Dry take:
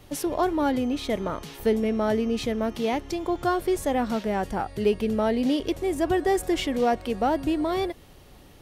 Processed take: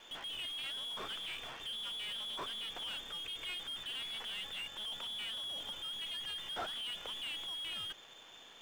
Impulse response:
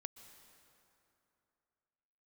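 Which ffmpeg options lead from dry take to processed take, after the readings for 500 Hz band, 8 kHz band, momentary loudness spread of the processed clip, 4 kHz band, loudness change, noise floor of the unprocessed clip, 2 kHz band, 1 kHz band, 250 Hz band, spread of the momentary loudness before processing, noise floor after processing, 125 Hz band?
-30.5 dB, -12.5 dB, 3 LU, +2.5 dB, -13.5 dB, -50 dBFS, -10.0 dB, -21.5 dB, -35.5 dB, 5 LU, -56 dBFS, -25.5 dB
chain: -filter_complex "[0:a]lowpass=f=3100:t=q:w=0.5098,lowpass=f=3100:t=q:w=0.6013,lowpass=f=3100:t=q:w=0.9,lowpass=f=3100:t=q:w=2.563,afreqshift=-3600,acrossover=split=230[s0][s1];[s1]asoftclip=type=tanh:threshold=0.0531[s2];[s0][s2]amix=inputs=2:normalize=0,highshelf=f=2700:g=-9,acrusher=bits=8:dc=4:mix=0:aa=0.000001,asplit=2[s3][s4];[s4]highpass=f=720:p=1,volume=12.6,asoftclip=type=tanh:threshold=0.0473[s5];[s3][s5]amix=inputs=2:normalize=0,lowpass=f=1700:p=1,volume=0.501,volume=0.562"

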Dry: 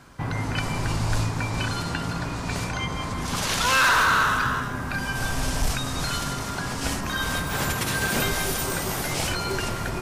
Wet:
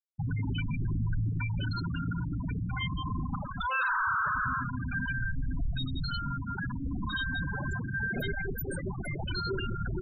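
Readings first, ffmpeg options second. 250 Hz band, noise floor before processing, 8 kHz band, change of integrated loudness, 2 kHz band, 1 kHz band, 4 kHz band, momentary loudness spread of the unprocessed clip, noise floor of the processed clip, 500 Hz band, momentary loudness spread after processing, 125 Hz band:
-5.0 dB, -31 dBFS, under -25 dB, -7.5 dB, -7.5 dB, -9.0 dB, -12.5 dB, 10 LU, -37 dBFS, -10.5 dB, 7 LU, -3.0 dB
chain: -af "asoftclip=type=tanh:threshold=0.0398,afftfilt=real='re*gte(hypot(re,im),0.0794)':imag='im*gte(hypot(re,im),0.0794)':win_size=1024:overlap=0.75,volume=1.33"

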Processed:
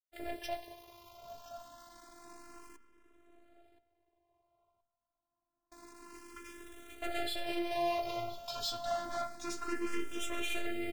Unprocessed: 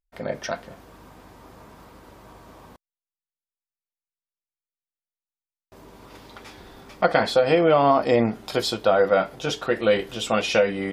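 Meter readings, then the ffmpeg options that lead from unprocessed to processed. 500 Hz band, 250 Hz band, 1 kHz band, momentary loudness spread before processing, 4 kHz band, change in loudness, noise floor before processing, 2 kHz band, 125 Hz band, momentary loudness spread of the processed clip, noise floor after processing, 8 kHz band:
-19.0 dB, -14.5 dB, -14.5 dB, 13 LU, -11.0 dB, -16.5 dB, under -85 dBFS, -14.5 dB, -23.0 dB, 19 LU, under -85 dBFS, -8.5 dB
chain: -filter_complex "[0:a]aeval=exprs='(tanh(28.2*val(0)+0.55)-tanh(0.55))/28.2':c=same,equalizer=f=1500:w=6.3:g=-3.5,asplit=2[s0][s1];[s1]adelay=14,volume=0.282[s2];[s0][s2]amix=inputs=2:normalize=0,acrusher=bits=9:dc=4:mix=0:aa=0.000001,bandreject=f=127.3:t=h:w=4,bandreject=f=254.6:t=h:w=4,bandreject=f=381.9:t=h:w=4,bandreject=f=509.2:t=h:w=4,bandreject=f=636.5:t=h:w=4,bandreject=f=763.8:t=h:w=4,bandreject=f=891.1:t=h:w=4,bandreject=f=1018.4:t=h:w=4,bandreject=f=1145.7:t=h:w=4,bandreject=f=1273:t=h:w=4,bandreject=f=1400.3:t=h:w=4,bandreject=f=1527.6:t=h:w=4,bandreject=f=1654.9:t=h:w=4,bandreject=f=1782.2:t=h:w=4,bandreject=f=1909.5:t=h:w=4,bandreject=f=2036.8:t=h:w=4,bandreject=f=2164.1:t=h:w=4,bandreject=f=2291.4:t=h:w=4,bandreject=f=2418.7:t=h:w=4,bandreject=f=2546:t=h:w=4,bandreject=f=2673.3:t=h:w=4,bandreject=f=2800.6:t=h:w=4,bandreject=f=2927.9:t=h:w=4,bandreject=f=3055.2:t=h:w=4,bandreject=f=3182.5:t=h:w=4,bandreject=f=3309.8:t=h:w=4,bandreject=f=3437.1:t=h:w=4,bandreject=f=3564.4:t=h:w=4,bandreject=f=3691.7:t=h:w=4,bandreject=f=3819:t=h:w=4,bandreject=f=3946.3:t=h:w=4,bandreject=f=4073.6:t=h:w=4,bandreject=f=4200.9:t=h:w=4,bandreject=f=4328.2:t=h:w=4,bandreject=f=4455.5:t=h:w=4,bandreject=f=4582.8:t=h:w=4,bandreject=f=4710.1:t=h:w=4,bandreject=f=4837.4:t=h:w=4,bandreject=f=4964.7:t=h:w=4,bandreject=f=5092:t=h:w=4,afftfilt=real='hypot(re,im)*cos(PI*b)':imag='0':win_size=512:overlap=0.75,asplit=2[s3][s4];[s4]adelay=1023,lowpass=f=1600:p=1,volume=0.316,asplit=2[s5][s6];[s6]adelay=1023,lowpass=f=1600:p=1,volume=0.31,asplit=2[s7][s8];[s8]adelay=1023,lowpass=f=1600:p=1,volume=0.31[s9];[s3][s5][s7][s9]amix=inputs=4:normalize=0,asplit=2[s10][s11];[s11]afreqshift=0.28[s12];[s10][s12]amix=inputs=2:normalize=1,volume=1.12"

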